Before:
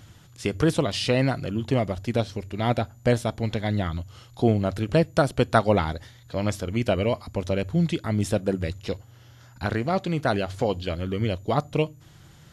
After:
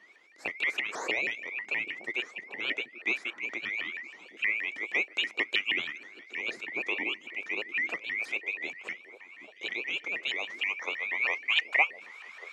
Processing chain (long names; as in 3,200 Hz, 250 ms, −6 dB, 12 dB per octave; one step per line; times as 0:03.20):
neighbouring bands swapped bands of 2,000 Hz
band-pass filter sweep 360 Hz → 1,200 Hz, 0:10.22–0:12.50
low-pass filter 8,300 Hz 12 dB per octave
spectral tilt +4 dB per octave
echo through a band-pass that steps 775 ms, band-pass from 220 Hz, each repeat 1.4 octaves, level −7.5 dB
pitch modulation by a square or saw wave saw up 6.3 Hz, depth 250 cents
level +9 dB